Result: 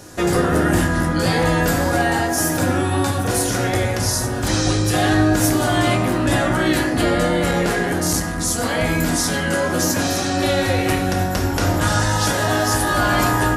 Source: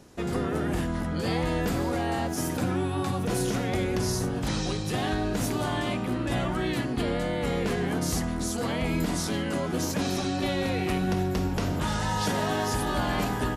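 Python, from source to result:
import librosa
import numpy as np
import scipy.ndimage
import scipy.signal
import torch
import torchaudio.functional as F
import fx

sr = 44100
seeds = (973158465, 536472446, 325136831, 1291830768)

y = fx.bass_treble(x, sr, bass_db=1, treble_db=10)
y = fx.rider(y, sr, range_db=10, speed_s=0.5)
y = fx.graphic_eq_15(y, sr, hz=(160, 630, 1600), db=(-3, 4, 7))
y = fx.rev_fdn(y, sr, rt60_s=1.1, lf_ratio=1.35, hf_ratio=0.45, size_ms=57.0, drr_db=1.5)
y = fx.transformer_sat(y, sr, knee_hz=320.0, at=(7.51, 8.38))
y = F.gain(torch.from_numpy(y), 4.0).numpy()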